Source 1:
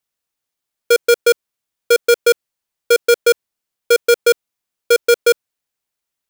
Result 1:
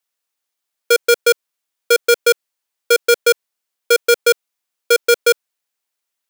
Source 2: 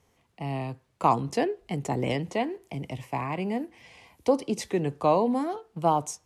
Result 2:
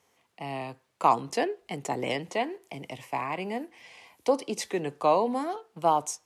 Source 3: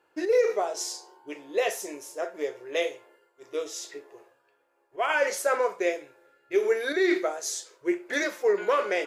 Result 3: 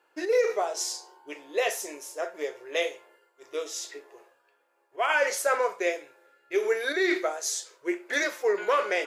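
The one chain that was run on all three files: HPF 530 Hz 6 dB/oct; gain +2 dB

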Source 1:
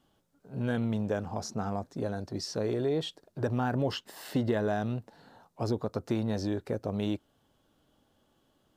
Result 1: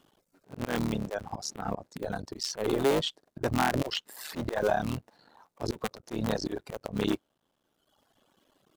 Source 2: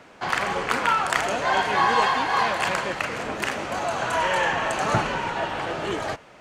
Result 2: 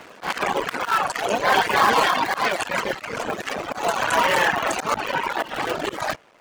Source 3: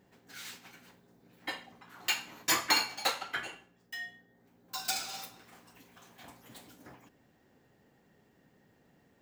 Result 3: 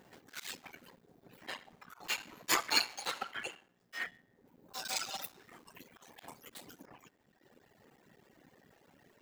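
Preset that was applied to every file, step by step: cycle switcher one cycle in 3, muted; in parallel at -5 dB: wavefolder -18 dBFS; on the sum: low shelf 130 Hz -9.5 dB; reverb removal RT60 1.4 s; auto swell 0.124 s; gain +4.5 dB

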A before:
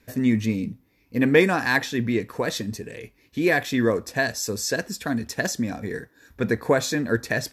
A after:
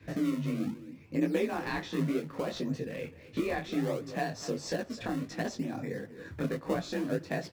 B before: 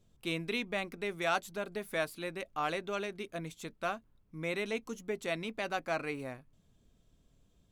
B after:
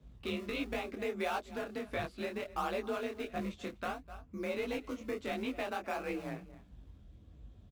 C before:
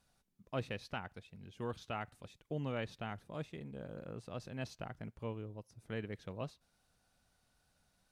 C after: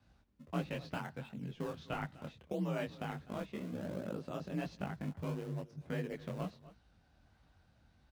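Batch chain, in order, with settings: dynamic EQ 1800 Hz, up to -7 dB, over -42 dBFS, Q 2.1; outdoor echo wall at 43 m, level -21 dB; frequency shift +39 Hz; LPF 3700 Hz 12 dB/oct; low shelf 80 Hz +10 dB; in parallel at -9.5 dB: decimation with a swept rate 31×, swing 160% 0.64 Hz; on the sum: compressor 2.5:1, threshold -40 dBFS; detuned doubles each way 51 cents; gain +7.5 dB

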